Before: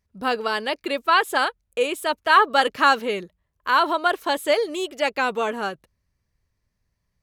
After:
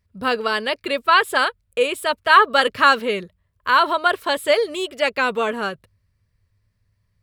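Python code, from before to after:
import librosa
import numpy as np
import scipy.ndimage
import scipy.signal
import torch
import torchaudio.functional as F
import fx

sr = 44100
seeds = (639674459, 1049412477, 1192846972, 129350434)

y = fx.graphic_eq_31(x, sr, hz=(100, 315, 800, 6300, 12500), db=(12, -8, -7, -8, -5))
y = y * 10.0 ** (4.0 / 20.0)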